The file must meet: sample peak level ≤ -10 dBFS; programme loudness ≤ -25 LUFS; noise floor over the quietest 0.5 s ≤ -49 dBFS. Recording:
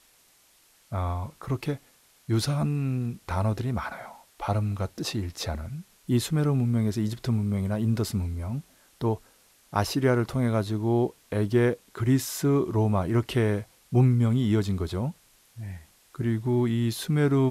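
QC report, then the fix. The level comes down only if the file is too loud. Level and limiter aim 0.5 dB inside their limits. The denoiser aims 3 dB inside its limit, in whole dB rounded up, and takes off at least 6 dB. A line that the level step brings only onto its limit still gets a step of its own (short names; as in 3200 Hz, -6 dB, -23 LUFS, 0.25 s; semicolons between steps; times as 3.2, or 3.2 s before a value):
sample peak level -8.5 dBFS: fail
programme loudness -27.0 LUFS: OK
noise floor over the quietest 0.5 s -61 dBFS: OK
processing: limiter -10.5 dBFS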